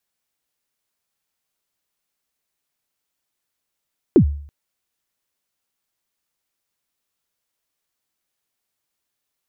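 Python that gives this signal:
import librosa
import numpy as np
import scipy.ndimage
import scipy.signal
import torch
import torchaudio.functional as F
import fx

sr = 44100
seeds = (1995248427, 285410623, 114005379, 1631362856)

y = fx.drum_kick(sr, seeds[0], length_s=0.33, level_db=-5, start_hz=420.0, end_hz=72.0, sweep_ms=87.0, decay_s=0.55, click=False)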